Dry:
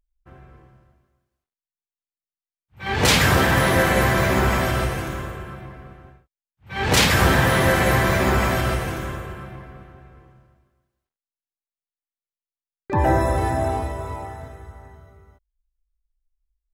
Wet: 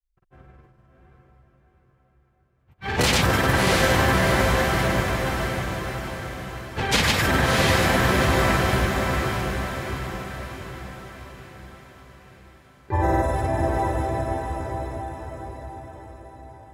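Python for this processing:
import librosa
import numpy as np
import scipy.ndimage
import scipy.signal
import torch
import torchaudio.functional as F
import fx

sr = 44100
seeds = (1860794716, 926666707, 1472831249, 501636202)

y = fx.granulator(x, sr, seeds[0], grain_ms=100.0, per_s=20.0, spray_ms=100.0, spread_st=0)
y = fx.echo_diffused(y, sr, ms=655, feedback_pct=52, wet_db=-3)
y = y * librosa.db_to_amplitude(-2.0)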